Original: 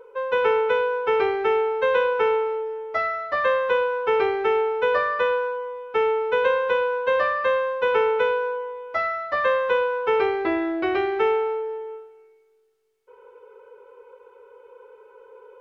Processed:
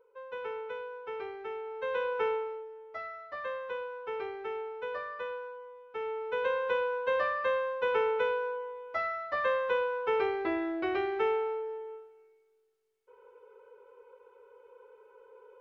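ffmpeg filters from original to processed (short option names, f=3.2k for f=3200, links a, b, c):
-af "volume=-1dB,afade=t=in:st=1.62:d=0.61:silence=0.354813,afade=t=out:st=2.23:d=0.46:silence=0.446684,afade=t=in:st=5.98:d=0.73:silence=0.398107"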